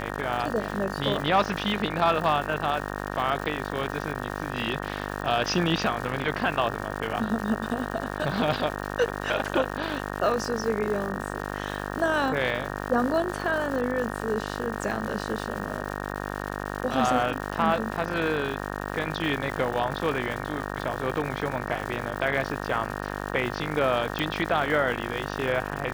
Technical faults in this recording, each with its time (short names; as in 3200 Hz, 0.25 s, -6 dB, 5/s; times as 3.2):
buzz 50 Hz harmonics 37 -33 dBFS
crackle 300/s -33 dBFS
24.19 pop